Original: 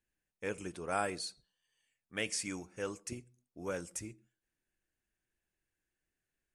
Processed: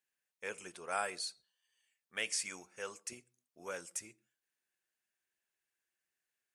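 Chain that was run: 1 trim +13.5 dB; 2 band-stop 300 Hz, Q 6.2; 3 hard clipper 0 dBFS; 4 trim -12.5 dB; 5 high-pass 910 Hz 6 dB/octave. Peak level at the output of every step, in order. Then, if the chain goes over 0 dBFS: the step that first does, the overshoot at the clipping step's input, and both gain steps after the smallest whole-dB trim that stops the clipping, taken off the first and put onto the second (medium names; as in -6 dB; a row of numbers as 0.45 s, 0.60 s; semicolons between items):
-5.0 dBFS, -5.5 dBFS, -5.5 dBFS, -18.0 dBFS, -21.0 dBFS; nothing clips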